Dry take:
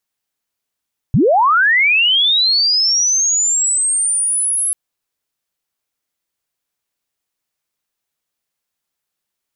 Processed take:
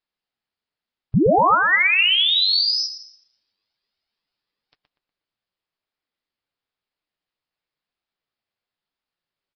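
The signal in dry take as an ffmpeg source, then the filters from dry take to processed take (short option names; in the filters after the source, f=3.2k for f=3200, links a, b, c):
-f lavfi -i "aevalsrc='pow(10,(-8.5-6*t/3.59)/20)*sin(2*PI*(95*t+10905*t*t/(2*3.59)))':d=3.59:s=44100"
-filter_complex "[0:a]flanger=delay=2.5:depth=8.3:regen=51:speed=1:shape=triangular,asplit=2[a][b];[b]adelay=121,lowpass=f=3.6k:p=1,volume=-6dB,asplit=2[c][d];[d]adelay=121,lowpass=f=3.6k:p=1,volume=0.4,asplit=2[e][f];[f]adelay=121,lowpass=f=3.6k:p=1,volume=0.4,asplit=2[g][h];[h]adelay=121,lowpass=f=3.6k:p=1,volume=0.4,asplit=2[i][j];[j]adelay=121,lowpass=f=3.6k:p=1,volume=0.4[k];[c][e][g][i][k]amix=inputs=5:normalize=0[l];[a][l]amix=inputs=2:normalize=0" -ar 11025 -c:a nellymoser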